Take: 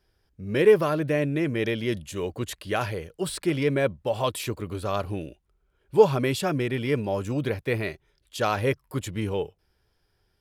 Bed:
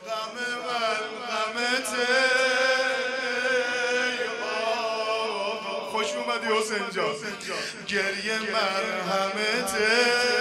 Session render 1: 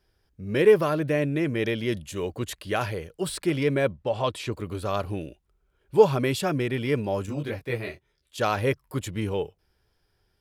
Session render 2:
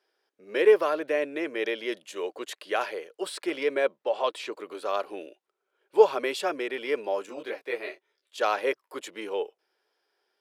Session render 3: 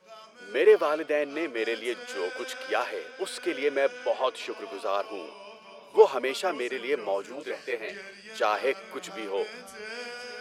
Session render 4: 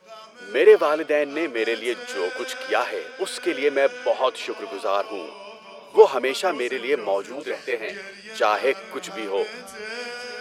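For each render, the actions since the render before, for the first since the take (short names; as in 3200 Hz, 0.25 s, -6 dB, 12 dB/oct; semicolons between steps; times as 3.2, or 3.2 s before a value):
3.91–4.52 air absorption 66 m; 7.26–8.38 detuned doubles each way 11 cents
HPF 380 Hz 24 dB/oct; high shelf 8400 Hz -11.5 dB
add bed -17 dB
gain +5.5 dB; limiter -2 dBFS, peak gain reduction 1 dB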